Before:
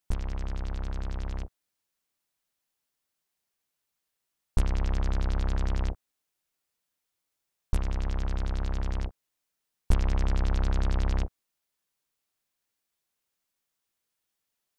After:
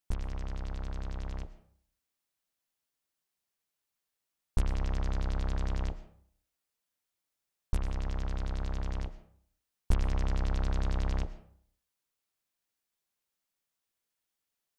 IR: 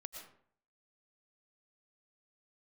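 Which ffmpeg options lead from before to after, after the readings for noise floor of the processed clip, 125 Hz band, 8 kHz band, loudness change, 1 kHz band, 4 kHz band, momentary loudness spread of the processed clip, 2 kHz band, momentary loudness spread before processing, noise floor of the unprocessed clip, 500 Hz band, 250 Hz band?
below −85 dBFS, −4.0 dB, can't be measured, −4.0 dB, −3.5 dB, −3.5 dB, 9 LU, −3.5 dB, 8 LU, −83 dBFS, −3.0 dB, −3.5 dB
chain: -filter_complex "[0:a]asplit=2[link_01][link_02];[1:a]atrim=start_sample=2205[link_03];[link_02][link_03]afir=irnorm=-1:irlink=0,volume=-2.5dB[link_04];[link_01][link_04]amix=inputs=2:normalize=0,volume=-6.5dB"

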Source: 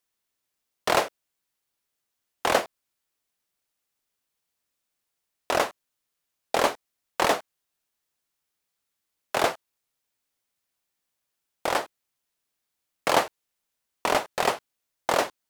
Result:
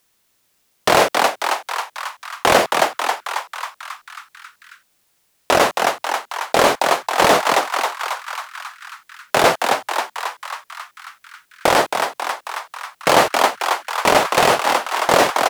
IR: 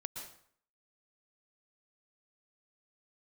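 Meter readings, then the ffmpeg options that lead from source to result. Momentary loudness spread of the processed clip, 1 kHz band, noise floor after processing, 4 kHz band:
17 LU, +12.5 dB, −64 dBFS, +12.0 dB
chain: -filter_complex "[0:a]equalizer=frequency=150:width=1.5:gain=3,asplit=2[link_01][link_02];[link_02]asplit=8[link_03][link_04][link_05][link_06][link_07][link_08][link_09][link_10];[link_03]adelay=271,afreqshift=110,volume=-11.5dB[link_11];[link_04]adelay=542,afreqshift=220,volume=-15.5dB[link_12];[link_05]adelay=813,afreqshift=330,volume=-19.5dB[link_13];[link_06]adelay=1084,afreqshift=440,volume=-23.5dB[link_14];[link_07]adelay=1355,afreqshift=550,volume=-27.6dB[link_15];[link_08]adelay=1626,afreqshift=660,volume=-31.6dB[link_16];[link_09]adelay=1897,afreqshift=770,volume=-35.6dB[link_17];[link_10]adelay=2168,afreqshift=880,volume=-39.6dB[link_18];[link_11][link_12][link_13][link_14][link_15][link_16][link_17][link_18]amix=inputs=8:normalize=0[link_19];[link_01][link_19]amix=inputs=2:normalize=0,alimiter=level_in=18dB:limit=-1dB:release=50:level=0:latency=1,volume=-1dB"

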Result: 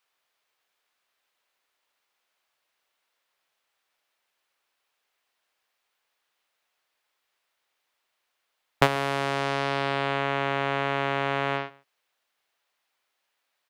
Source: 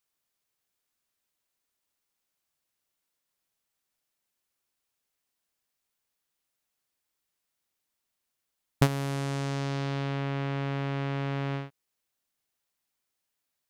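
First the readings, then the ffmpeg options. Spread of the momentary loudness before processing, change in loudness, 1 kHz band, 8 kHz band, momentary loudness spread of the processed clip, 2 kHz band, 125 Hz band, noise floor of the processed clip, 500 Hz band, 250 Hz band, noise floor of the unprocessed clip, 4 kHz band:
5 LU, +4.5 dB, +10.5 dB, 0.0 dB, 3 LU, +10.5 dB, −5.5 dB, −79 dBFS, +7.5 dB, −1.5 dB, −83 dBFS, +8.0 dB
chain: -filter_complex "[0:a]acrossover=split=440 4100:gain=0.141 1 0.224[link_01][link_02][link_03];[link_01][link_02][link_03]amix=inputs=3:normalize=0,asplit=2[link_04][link_05];[link_05]volume=29dB,asoftclip=hard,volume=-29dB,volume=-9.5dB[link_06];[link_04][link_06]amix=inputs=2:normalize=0,asplit=2[link_07][link_08];[link_08]adelay=139.9,volume=-23dB,highshelf=frequency=4000:gain=-3.15[link_09];[link_07][link_09]amix=inputs=2:normalize=0,volume=9dB"

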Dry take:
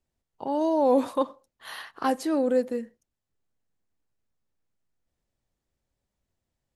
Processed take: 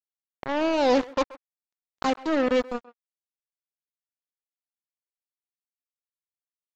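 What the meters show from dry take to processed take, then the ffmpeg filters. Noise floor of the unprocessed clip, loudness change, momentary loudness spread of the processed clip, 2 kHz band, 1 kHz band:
−85 dBFS, +0.5 dB, 12 LU, +7.5 dB, +0.5 dB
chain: -filter_complex "[0:a]equalizer=frequency=1900:width=7.9:gain=-12,acrusher=bits=3:mix=0:aa=0.5,aresample=16000,aresample=44100,asplit=2[link_01][link_02];[link_02]adelay=130,highpass=300,lowpass=3400,asoftclip=type=hard:threshold=-20dB,volume=-18dB[link_03];[link_01][link_03]amix=inputs=2:normalize=0"

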